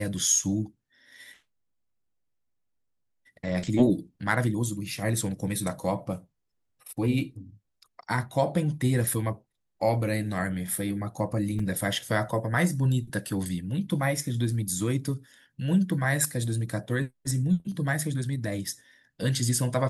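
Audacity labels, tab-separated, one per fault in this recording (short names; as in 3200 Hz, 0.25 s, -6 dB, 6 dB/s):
11.590000	11.590000	gap 4.3 ms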